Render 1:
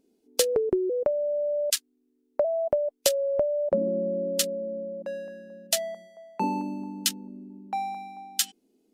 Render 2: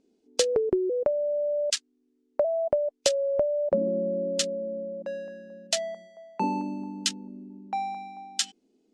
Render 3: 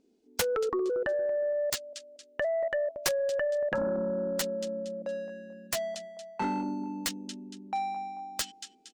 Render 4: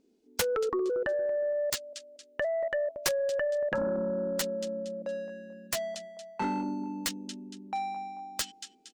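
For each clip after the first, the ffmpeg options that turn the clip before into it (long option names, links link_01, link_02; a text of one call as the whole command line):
ffmpeg -i in.wav -af "lowpass=frequency=7700:width=0.5412,lowpass=frequency=7700:width=1.3066" out.wav
ffmpeg -i in.wav -af "aecho=1:1:232|464|696:0.158|0.0586|0.0217,aeval=exprs='0.473*(cos(1*acos(clip(val(0)/0.473,-1,1)))-cos(1*PI/2))+0.106*(cos(2*acos(clip(val(0)/0.473,-1,1)))-cos(2*PI/2))+0.211*(cos(7*acos(clip(val(0)/0.473,-1,1)))-cos(7*PI/2))+0.00473*(cos(8*acos(clip(val(0)/0.473,-1,1)))-cos(8*PI/2))':channel_layout=same,volume=-7dB" out.wav
ffmpeg -i in.wav -af "equalizer=frequency=730:width_type=o:width=0.26:gain=-2.5" out.wav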